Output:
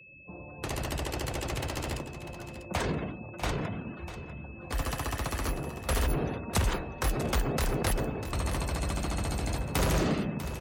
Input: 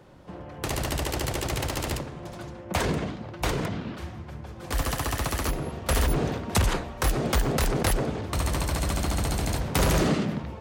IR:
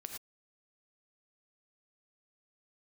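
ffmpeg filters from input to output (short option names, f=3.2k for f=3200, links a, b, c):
-af "afftdn=nr=30:nf=-43,aecho=1:1:646:0.251,aeval=exprs='val(0)+0.00501*sin(2*PI*2600*n/s)':c=same,volume=-4.5dB"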